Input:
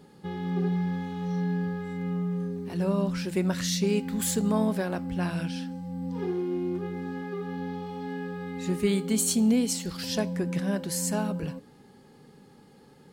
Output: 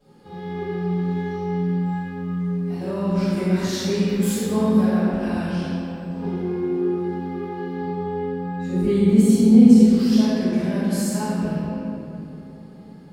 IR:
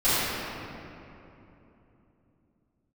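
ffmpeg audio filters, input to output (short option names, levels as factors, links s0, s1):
-filter_complex "[0:a]asettb=1/sr,asplit=3[s0][s1][s2];[s0]atrim=end=7.794[s3];[s1]atrim=start=7.79:end=9.82,asetpts=PTS-STARTPTS,afade=t=in:d=0.004:c=qsin,afade=t=out:st=2.026:d=0.004:c=qsin,tiltshelf=f=880:g=6[s4];[s2]atrim=start=9.816[s5];[s3][s4]acrossfade=d=0.004:c1=hsin:c2=qsin[s6];[s6][s5]acrossfade=d=0.004:c1=qsin:c2=hsin[s7];[1:a]atrim=start_sample=2205[s8];[s7][s8]afir=irnorm=-1:irlink=0,volume=0.211"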